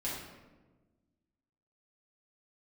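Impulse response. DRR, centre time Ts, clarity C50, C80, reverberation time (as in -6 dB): -8.0 dB, 66 ms, 0.5 dB, 4.0 dB, 1.3 s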